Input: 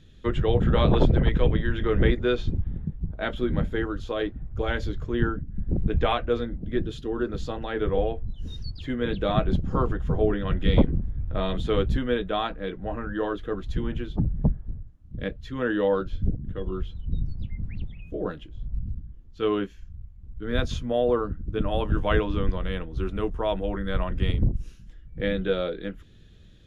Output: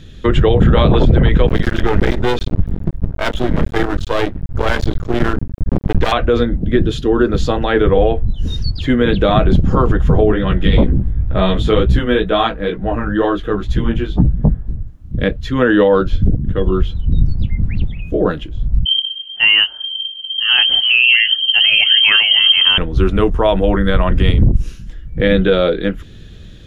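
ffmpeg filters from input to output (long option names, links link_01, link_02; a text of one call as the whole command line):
ffmpeg -i in.wav -filter_complex "[0:a]asplit=3[link_01][link_02][link_03];[link_01]afade=type=out:start_time=1.46:duration=0.02[link_04];[link_02]aeval=exprs='max(val(0),0)':channel_layout=same,afade=type=in:start_time=1.46:duration=0.02,afade=type=out:start_time=6.11:duration=0.02[link_05];[link_03]afade=type=in:start_time=6.11:duration=0.02[link_06];[link_04][link_05][link_06]amix=inputs=3:normalize=0,asplit=3[link_07][link_08][link_09];[link_07]afade=type=out:start_time=10.31:duration=0.02[link_10];[link_08]flanger=delay=15.5:depth=4.1:speed=2.1,afade=type=in:start_time=10.31:duration=0.02,afade=type=out:start_time=14.79:duration=0.02[link_11];[link_09]afade=type=in:start_time=14.79:duration=0.02[link_12];[link_10][link_11][link_12]amix=inputs=3:normalize=0,asettb=1/sr,asplit=3[link_13][link_14][link_15];[link_13]atrim=end=18.854[link_16];[link_14]atrim=start=18.85:end=22.78,asetpts=PTS-STARTPTS,afade=type=in:duration=0.004:curve=qsin,afade=type=out:start_time=3.926:duration=0.004:curve=qsin,lowpass=frequency=2700:width_type=q:width=0.5098,lowpass=frequency=2700:width_type=q:width=0.6013,lowpass=frequency=2700:width_type=q:width=0.9,lowpass=frequency=2700:width_type=q:width=2.563,afreqshift=-3200[link_17];[link_15]atrim=start=22.776[link_18];[link_16][link_17]acrossfade=duration=0.004:curve1=hsin:curve2=qsin[link_19];[link_19][link_18]acrossfade=duration=0.004:curve1=qsin:curve2=hsin,alimiter=level_in=17dB:limit=-1dB:release=50:level=0:latency=1,volume=-1.5dB" out.wav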